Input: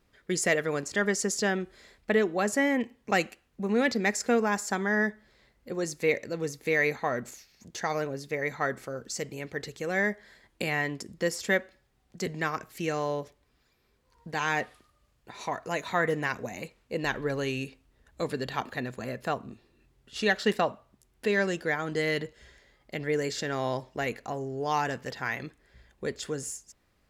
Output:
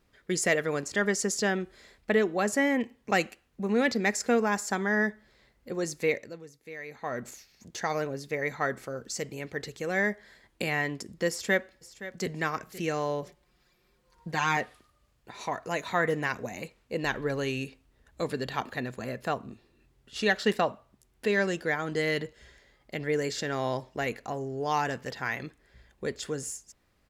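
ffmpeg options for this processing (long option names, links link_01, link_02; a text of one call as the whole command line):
ffmpeg -i in.wav -filter_complex "[0:a]asplit=2[link_01][link_02];[link_02]afade=type=in:start_time=11.29:duration=0.01,afade=type=out:start_time=12.3:duration=0.01,aecho=0:1:520|1040:0.188365|0.0282547[link_03];[link_01][link_03]amix=inputs=2:normalize=0,asettb=1/sr,asplit=3[link_04][link_05][link_06];[link_04]atrim=end=13.224[link_07];[link_05]atrim=start=13.22:end=14.57,asetpts=PTS-STARTPTS,afade=type=in:duration=0.004:curve=qsin,afade=type=out:start_time=1.346:duration=0.004:curve=qsin,aecho=1:1:5.6:0.8,atrim=end_sample=59535[link_08];[link_06]atrim=start=14.566[link_09];[link_07][link_08]acrossfade=duration=0.004:curve1=hsin:curve2=qsin[link_10];[link_10][link_09]acrossfade=duration=0.004:curve1=qsin:curve2=hsin,asplit=3[link_11][link_12][link_13];[link_11]atrim=end=6.44,asetpts=PTS-STARTPTS,afade=type=out:start_time=6.02:duration=0.42:silence=0.158489[link_14];[link_12]atrim=start=6.44:end=6.88,asetpts=PTS-STARTPTS,volume=-16dB[link_15];[link_13]atrim=start=6.88,asetpts=PTS-STARTPTS,afade=type=in:duration=0.42:silence=0.158489[link_16];[link_14][link_15][link_16]concat=n=3:v=0:a=1" out.wav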